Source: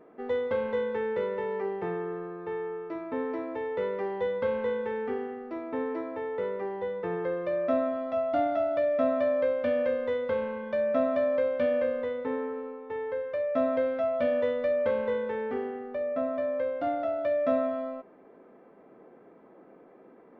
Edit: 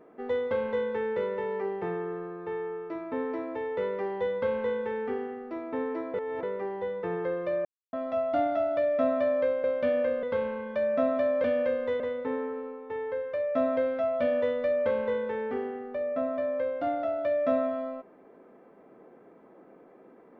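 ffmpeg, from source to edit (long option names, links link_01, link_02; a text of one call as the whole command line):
ffmpeg -i in.wav -filter_complex "[0:a]asplit=9[link_01][link_02][link_03][link_04][link_05][link_06][link_07][link_08][link_09];[link_01]atrim=end=6.142[link_10];[link_02]atrim=start=6.138:end=6.432,asetpts=PTS-STARTPTS,areverse[link_11];[link_03]atrim=start=6.428:end=7.65,asetpts=PTS-STARTPTS,afade=type=out:start_time=1.218:duration=0.004:curve=hsin[link_12];[link_04]atrim=start=7.65:end=7.93,asetpts=PTS-STARTPTS,volume=0[link_13];[link_05]atrim=start=7.93:end=9.642,asetpts=PTS-STARTPTS,afade=type=in:duration=0.004:curve=hsin[link_14];[link_06]atrim=start=11.408:end=12.002[link_15];[link_07]atrim=start=10.198:end=11.412[link_16];[link_08]atrim=start=9.638:end=10.202[link_17];[link_09]atrim=start=11.998[link_18];[link_10][link_11]acrossfade=duration=0.004:curve1=hsin:curve2=hsin[link_19];[link_12][link_13][link_14]concat=n=3:v=0:a=1[link_20];[link_19][link_20]acrossfade=duration=0.004:curve1=hsin:curve2=hsin[link_21];[link_21][link_15]acrossfade=duration=0.004:curve1=hsin:curve2=hsin[link_22];[link_22][link_16]acrossfade=duration=0.004:curve1=hsin:curve2=hsin[link_23];[link_23][link_17]acrossfade=duration=0.004:curve1=hsin:curve2=hsin[link_24];[link_24][link_18]acrossfade=duration=0.004:curve1=hsin:curve2=hsin" out.wav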